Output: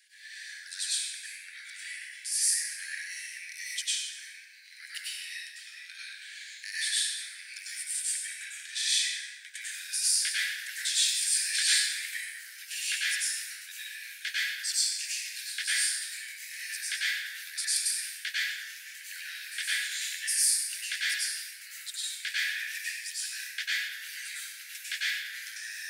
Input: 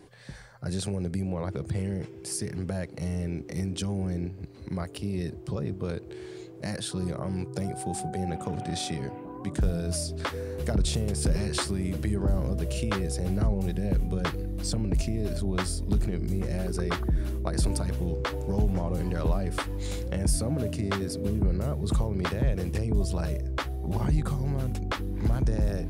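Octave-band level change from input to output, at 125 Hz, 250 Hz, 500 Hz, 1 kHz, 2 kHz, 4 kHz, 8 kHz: under -40 dB, under -40 dB, under -40 dB, -20.0 dB, +9.0 dB, +9.5 dB, +10.0 dB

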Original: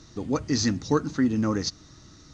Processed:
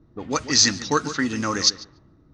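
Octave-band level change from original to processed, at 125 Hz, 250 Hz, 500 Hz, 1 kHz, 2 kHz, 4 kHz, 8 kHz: -3.5 dB, -2.5 dB, +0.5 dB, +7.5 dB, +10.5 dB, +12.5 dB, n/a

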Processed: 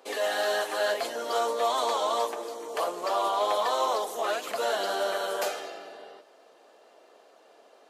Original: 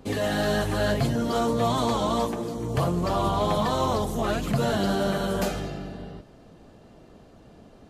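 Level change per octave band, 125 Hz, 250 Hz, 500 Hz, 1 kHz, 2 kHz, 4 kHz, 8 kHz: under -35 dB, -18.5 dB, -1.5 dB, 0.0 dB, 0.0 dB, 0.0 dB, 0.0 dB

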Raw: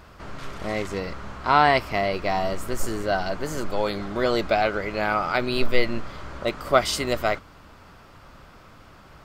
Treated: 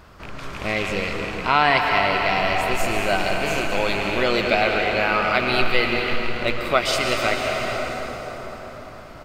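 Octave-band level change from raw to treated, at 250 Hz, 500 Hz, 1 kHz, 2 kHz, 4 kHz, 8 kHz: +2.0, +2.0, +2.5, +7.0, +6.5, +2.5 dB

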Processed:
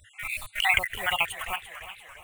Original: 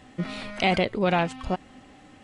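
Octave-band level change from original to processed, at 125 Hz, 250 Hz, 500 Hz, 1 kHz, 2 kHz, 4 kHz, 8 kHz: -16.0, -25.0, -14.5, -4.0, +5.0, +3.5, +9.0 dB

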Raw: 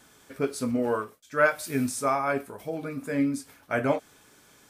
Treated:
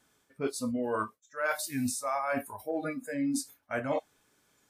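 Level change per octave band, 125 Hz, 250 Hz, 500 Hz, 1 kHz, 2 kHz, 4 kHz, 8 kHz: -7.0, -4.5, -6.0, -5.0, -6.5, -0.5, 0.0 dB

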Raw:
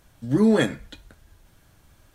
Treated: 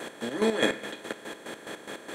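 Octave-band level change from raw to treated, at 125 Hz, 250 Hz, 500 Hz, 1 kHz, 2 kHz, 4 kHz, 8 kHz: -16.0, -10.5, -3.5, 0.0, +1.0, +3.0, +2.0 dB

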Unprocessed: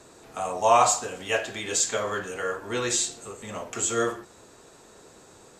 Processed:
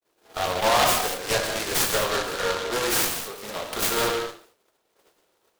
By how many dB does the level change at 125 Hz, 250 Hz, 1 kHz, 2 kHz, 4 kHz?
+3.0, +1.5, -0.5, +4.5, +7.5 dB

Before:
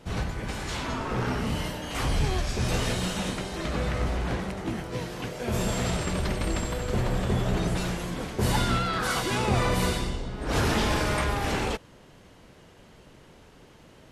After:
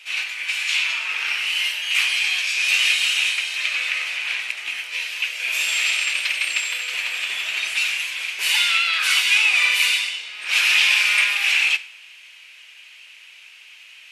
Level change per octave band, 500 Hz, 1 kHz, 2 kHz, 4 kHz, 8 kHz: under -15 dB, -5.0 dB, +16.0 dB, +15.0 dB, +9.0 dB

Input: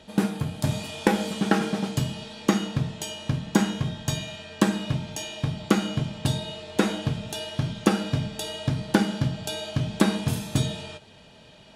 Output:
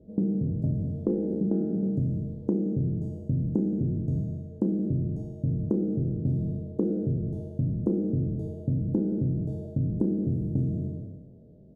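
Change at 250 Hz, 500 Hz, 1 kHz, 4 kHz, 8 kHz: -1.0 dB, -3.0 dB, under -20 dB, under -40 dB, under -35 dB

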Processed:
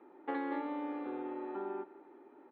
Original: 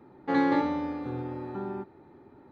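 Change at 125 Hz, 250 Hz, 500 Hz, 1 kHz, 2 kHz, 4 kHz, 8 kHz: under -25 dB, -10.5 dB, -7.0 dB, -9.0 dB, -10.5 dB, under -10 dB, n/a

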